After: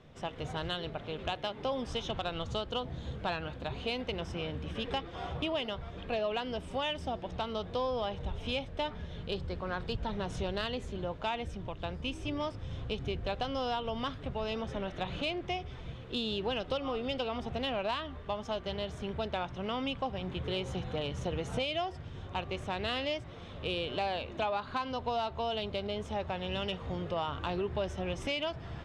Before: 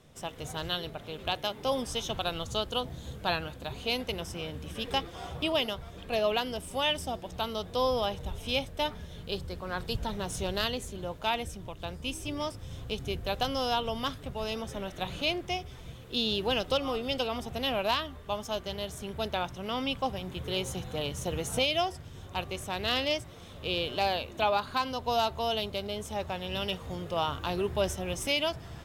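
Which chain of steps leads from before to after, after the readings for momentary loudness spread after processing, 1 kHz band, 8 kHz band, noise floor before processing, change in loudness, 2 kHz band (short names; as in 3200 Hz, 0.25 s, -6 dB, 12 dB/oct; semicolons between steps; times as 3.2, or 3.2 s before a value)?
5 LU, -3.5 dB, -13.5 dB, -47 dBFS, -3.5 dB, -4.0 dB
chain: LPF 3400 Hz 12 dB/oct; compressor 3:1, threshold -33 dBFS, peak gain reduction 8 dB; soft clip -22 dBFS, distortion -28 dB; gain +2 dB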